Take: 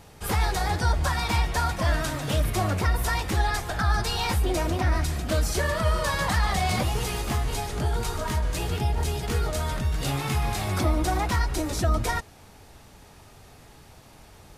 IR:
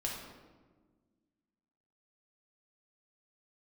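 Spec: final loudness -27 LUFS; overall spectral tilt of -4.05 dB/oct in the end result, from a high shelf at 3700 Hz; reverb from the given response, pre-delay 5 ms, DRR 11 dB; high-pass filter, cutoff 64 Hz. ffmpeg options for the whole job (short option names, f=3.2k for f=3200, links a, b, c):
-filter_complex "[0:a]highpass=64,highshelf=f=3.7k:g=6.5,asplit=2[a][b];[1:a]atrim=start_sample=2205,adelay=5[c];[b][c]afir=irnorm=-1:irlink=0,volume=-13.5dB[d];[a][d]amix=inputs=2:normalize=0,volume=-1.5dB"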